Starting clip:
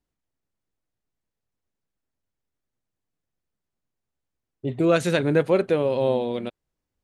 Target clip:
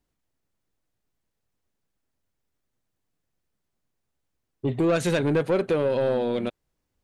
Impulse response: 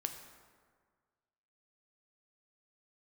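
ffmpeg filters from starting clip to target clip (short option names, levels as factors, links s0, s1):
-af "acompressor=threshold=0.0631:ratio=2,asoftclip=type=tanh:threshold=0.0944,volume=1.68"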